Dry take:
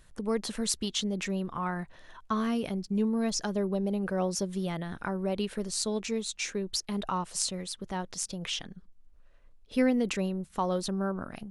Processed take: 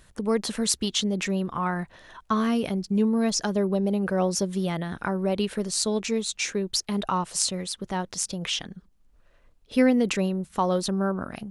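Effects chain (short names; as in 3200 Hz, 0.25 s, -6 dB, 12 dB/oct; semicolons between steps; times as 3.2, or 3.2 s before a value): HPF 42 Hz 6 dB/oct; gain +5.5 dB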